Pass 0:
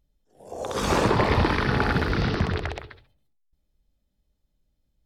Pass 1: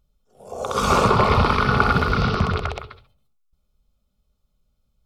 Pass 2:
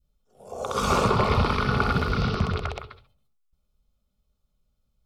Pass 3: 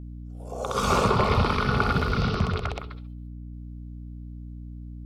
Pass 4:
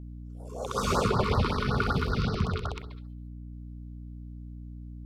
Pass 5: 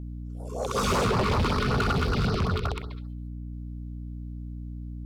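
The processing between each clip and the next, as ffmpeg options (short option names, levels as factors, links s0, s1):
-af "superequalizer=6b=0.355:10b=2.24:11b=0.398,volume=1.5"
-af "adynamicequalizer=threshold=0.0398:dfrequency=1100:dqfactor=0.71:tfrequency=1100:tqfactor=0.71:attack=5:release=100:ratio=0.375:range=2:mode=cutabove:tftype=bell,volume=0.668"
-af "aeval=exprs='val(0)+0.0141*(sin(2*PI*60*n/s)+sin(2*PI*2*60*n/s)/2+sin(2*PI*3*60*n/s)/3+sin(2*PI*4*60*n/s)/4+sin(2*PI*5*60*n/s)/5)':c=same"
-af "afftfilt=real='re*(1-between(b*sr/1024,610*pow(2800/610,0.5+0.5*sin(2*PI*5.3*pts/sr))/1.41,610*pow(2800/610,0.5+0.5*sin(2*PI*5.3*pts/sr))*1.41))':imag='im*(1-between(b*sr/1024,610*pow(2800/610,0.5+0.5*sin(2*PI*5.3*pts/sr))/1.41,610*pow(2800/610,0.5+0.5*sin(2*PI*5.3*pts/sr))*1.41))':win_size=1024:overlap=0.75,volume=0.708"
-af "asoftclip=type=hard:threshold=0.0501,volume=1.78"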